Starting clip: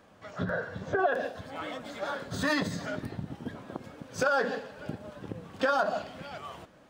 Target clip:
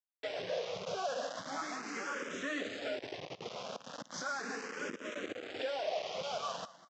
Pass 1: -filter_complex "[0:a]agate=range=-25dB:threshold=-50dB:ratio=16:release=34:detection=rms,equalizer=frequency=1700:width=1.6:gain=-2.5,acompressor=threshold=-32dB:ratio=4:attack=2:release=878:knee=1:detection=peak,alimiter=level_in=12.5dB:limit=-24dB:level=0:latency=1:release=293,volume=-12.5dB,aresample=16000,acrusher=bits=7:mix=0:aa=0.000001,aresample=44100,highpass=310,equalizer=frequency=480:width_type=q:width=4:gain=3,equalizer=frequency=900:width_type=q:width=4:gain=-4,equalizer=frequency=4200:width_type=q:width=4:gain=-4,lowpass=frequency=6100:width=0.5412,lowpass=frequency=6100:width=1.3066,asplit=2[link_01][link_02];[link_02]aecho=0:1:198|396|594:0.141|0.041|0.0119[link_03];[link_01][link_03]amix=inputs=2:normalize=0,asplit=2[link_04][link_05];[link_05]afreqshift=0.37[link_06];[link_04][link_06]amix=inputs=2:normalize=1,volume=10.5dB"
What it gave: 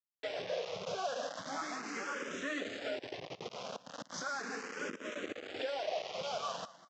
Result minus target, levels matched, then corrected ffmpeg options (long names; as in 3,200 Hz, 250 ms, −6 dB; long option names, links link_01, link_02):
downward compressor: peak gain reduction +7 dB
-filter_complex "[0:a]agate=range=-25dB:threshold=-50dB:ratio=16:release=34:detection=rms,equalizer=frequency=1700:width=1.6:gain=-2.5,acompressor=threshold=-22.5dB:ratio=4:attack=2:release=878:knee=1:detection=peak,alimiter=level_in=12.5dB:limit=-24dB:level=0:latency=1:release=293,volume=-12.5dB,aresample=16000,acrusher=bits=7:mix=0:aa=0.000001,aresample=44100,highpass=310,equalizer=frequency=480:width_type=q:width=4:gain=3,equalizer=frequency=900:width_type=q:width=4:gain=-4,equalizer=frequency=4200:width_type=q:width=4:gain=-4,lowpass=frequency=6100:width=0.5412,lowpass=frequency=6100:width=1.3066,asplit=2[link_01][link_02];[link_02]aecho=0:1:198|396|594:0.141|0.041|0.0119[link_03];[link_01][link_03]amix=inputs=2:normalize=0,asplit=2[link_04][link_05];[link_05]afreqshift=0.37[link_06];[link_04][link_06]amix=inputs=2:normalize=1,volume=10.5dB"